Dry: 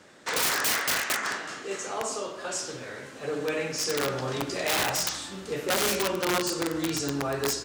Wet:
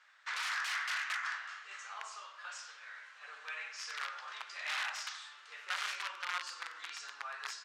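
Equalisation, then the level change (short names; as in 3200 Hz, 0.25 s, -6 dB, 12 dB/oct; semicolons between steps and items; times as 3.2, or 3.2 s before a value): HPF 1200 Hz 24 dB/oct; tape spacing loss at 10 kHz 23 dB; -2.0 dB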